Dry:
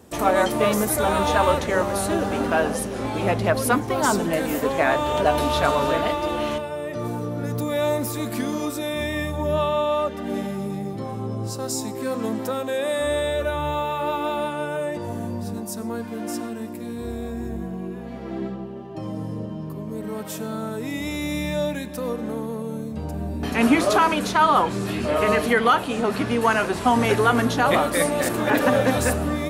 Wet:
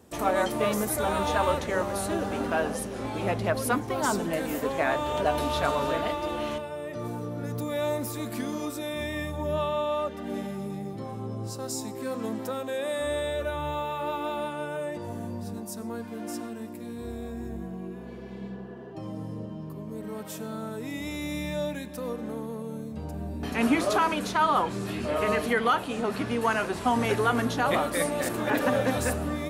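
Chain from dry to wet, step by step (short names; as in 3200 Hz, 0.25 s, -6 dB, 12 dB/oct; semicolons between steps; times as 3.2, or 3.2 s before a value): spectral repair 18.03–18.89, 250–2000 Hz before; gain -6 dB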